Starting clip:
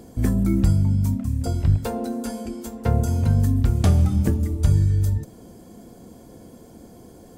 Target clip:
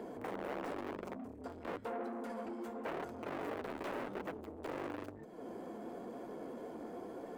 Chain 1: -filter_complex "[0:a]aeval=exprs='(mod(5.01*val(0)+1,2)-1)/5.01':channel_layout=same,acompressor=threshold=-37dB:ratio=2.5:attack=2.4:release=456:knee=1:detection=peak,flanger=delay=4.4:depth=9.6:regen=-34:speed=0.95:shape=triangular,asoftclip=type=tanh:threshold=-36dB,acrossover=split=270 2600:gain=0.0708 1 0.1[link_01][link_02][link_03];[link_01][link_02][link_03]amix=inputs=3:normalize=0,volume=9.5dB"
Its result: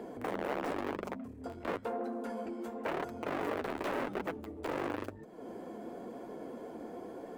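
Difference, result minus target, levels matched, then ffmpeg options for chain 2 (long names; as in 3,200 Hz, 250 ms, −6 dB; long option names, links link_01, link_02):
soft clipping: distortion −7 dB
-filter_complex "[0:a]aeval=exprs='(mod(5.01*val(0)+1,2)-1)/5.01':channel_layout=same,acompressor=threshold=-37dB:ratio=2.5:attack=2.4:release=456:knee=1:detection=peak,flanger=delay=4.4:depth=9.6:regen=-34:speed=0.95:shape=triangular,asoftclip=type=tanh:threshold=-44dB,acrossover=split=270 2600:gain=0.0708 1 0.1[link_01][link_02][link_03];[link_01][link_02][link_03]amix=inputs=3:normalize=0,volume=9.5dB"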